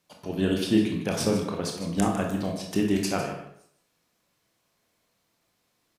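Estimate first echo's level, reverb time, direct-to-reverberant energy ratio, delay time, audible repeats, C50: -11.5 dB, 0.70 s, 1.0 dB, 0.152 s, 1, 4.5 dB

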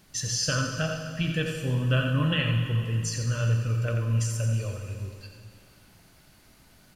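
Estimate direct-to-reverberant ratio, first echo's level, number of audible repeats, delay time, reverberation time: 2.0 dB, -7.0 dB, 1, 87 ms, 2.3 s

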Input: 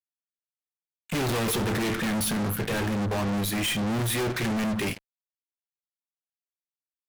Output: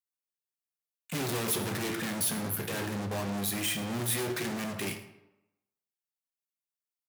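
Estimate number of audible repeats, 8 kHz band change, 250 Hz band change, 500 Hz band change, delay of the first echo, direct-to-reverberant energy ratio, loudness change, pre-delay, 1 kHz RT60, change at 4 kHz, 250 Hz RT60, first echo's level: 1, -0.5 dB, -7.5 dB, -5.5 dB, 0.109 s, 7.5 dB, -4.5 dB, 8 ms, 0.95 s, -4.5 dB, 0.90 s, -17.0 dB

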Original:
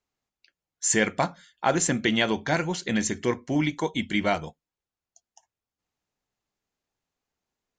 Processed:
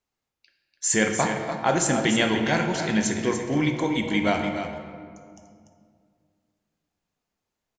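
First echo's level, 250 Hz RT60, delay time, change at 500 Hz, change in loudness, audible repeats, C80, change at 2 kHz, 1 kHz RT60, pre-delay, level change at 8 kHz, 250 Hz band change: -8.5 dB, 2.8 s, 0.292 s, +2.5 dB, +2.0 dB, 1, 4.5 dB, +2.0 dB, 2.0 s, 16 ms, +1.0 dB, +3.0 dB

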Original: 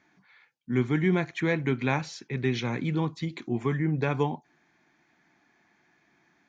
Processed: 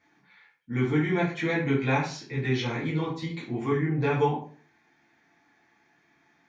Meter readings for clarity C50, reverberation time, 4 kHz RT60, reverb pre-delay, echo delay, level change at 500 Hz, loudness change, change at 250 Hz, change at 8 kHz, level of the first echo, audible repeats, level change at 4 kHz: 6.0 dB, 0.45 s, 0.35 s, 5 ms, none, +1.5 dB, +0.5 dB, 0.0 dB, n/a, none, none, +1.5 dB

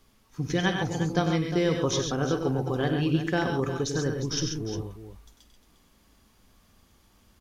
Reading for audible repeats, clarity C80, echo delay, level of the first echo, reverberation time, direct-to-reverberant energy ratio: 4, none, 50 ms, -14.0 dB, none, none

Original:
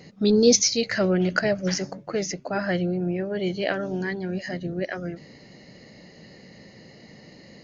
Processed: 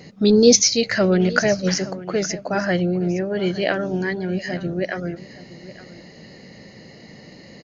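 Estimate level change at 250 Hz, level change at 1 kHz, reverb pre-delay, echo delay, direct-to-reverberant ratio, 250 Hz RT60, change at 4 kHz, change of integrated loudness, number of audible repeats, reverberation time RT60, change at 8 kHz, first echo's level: +4.5 dB, +4.5 dB, none, 0.867 s, none, none, +4.5 dB, +4.5 dB, 1, none, n/a, -17.5 dB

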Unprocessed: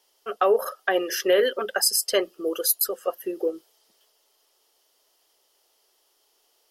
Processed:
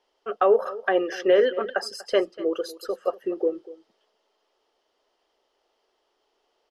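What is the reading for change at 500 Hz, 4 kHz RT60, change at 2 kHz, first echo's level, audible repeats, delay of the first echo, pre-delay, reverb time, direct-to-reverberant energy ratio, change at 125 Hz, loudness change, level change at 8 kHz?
+1.5 dB, none, -2.0 dB, -18.0 dB, 1, 0.241 s, none, none, none, n/a, -1.0 dB, -19.5 dB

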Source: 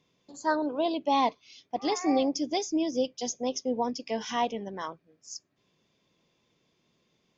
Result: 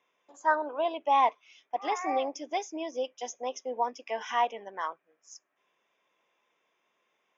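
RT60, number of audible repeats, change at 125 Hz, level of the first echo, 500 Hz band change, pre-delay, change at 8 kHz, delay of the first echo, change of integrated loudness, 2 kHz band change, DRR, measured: none, none, under -15 dB, none, -2.5 dB, none, n/a, none, -1.5 dB, +3.0 dB, none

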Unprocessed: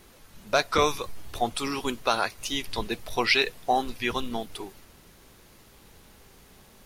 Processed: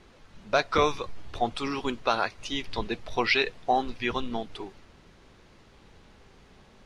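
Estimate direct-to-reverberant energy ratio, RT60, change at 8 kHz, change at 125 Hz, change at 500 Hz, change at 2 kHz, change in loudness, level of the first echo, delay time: none, none, -9.0 dB, 0.0 dB, -0.5 dB, -1.5 dB, -1.0 dB, none, none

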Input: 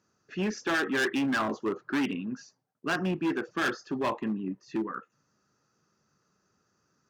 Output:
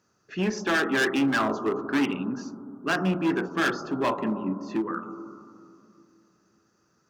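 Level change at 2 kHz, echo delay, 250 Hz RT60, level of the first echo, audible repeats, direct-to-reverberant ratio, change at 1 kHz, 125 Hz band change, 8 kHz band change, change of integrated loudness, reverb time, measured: +3.5 dB, none, 3.0 s, none, none, 9.5 dB, +4.5 dB, +4.5 dB, +3.5 dB, +4.0 dB, 2.5 s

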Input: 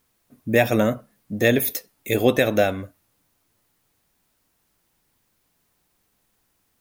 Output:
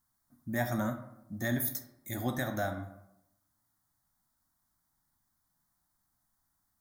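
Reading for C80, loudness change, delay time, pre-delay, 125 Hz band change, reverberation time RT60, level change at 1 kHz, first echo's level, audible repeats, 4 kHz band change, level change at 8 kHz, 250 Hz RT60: 13.0 dB, -13.0 dB, none, 13 ms, -9.0 dB, 0.85 s, -10.0 dB, none, none, -15.5 dB, -9.0 dB, 0.90 s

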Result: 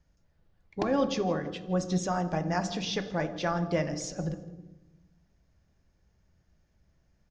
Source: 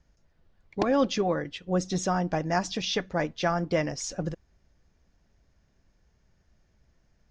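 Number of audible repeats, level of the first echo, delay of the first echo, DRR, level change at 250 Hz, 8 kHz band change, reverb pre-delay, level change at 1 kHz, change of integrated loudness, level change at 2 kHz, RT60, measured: 2, -20.0 dB, 0.163 s, 8.5 dB, -1.5 dB, -3.5 dB, 3 ms, -3.0 dB, -2.5 dB, -3.5 dB, 1.1 s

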